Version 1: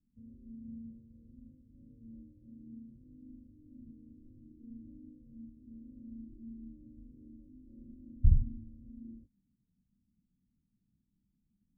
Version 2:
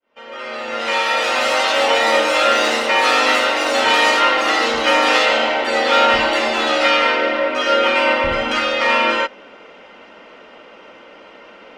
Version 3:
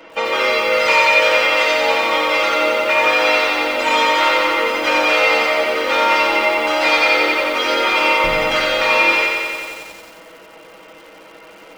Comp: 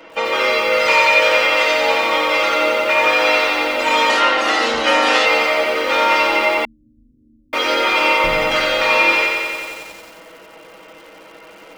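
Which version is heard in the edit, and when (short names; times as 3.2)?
3
4.1–5.26 from 2
6.65–7.53 from 1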